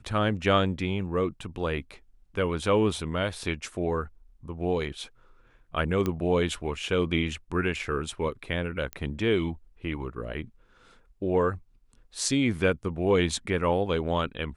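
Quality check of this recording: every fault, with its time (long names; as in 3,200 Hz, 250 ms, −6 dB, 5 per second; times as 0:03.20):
0:06.06: click −15 dBFS
0:08.93: click −18 dBFS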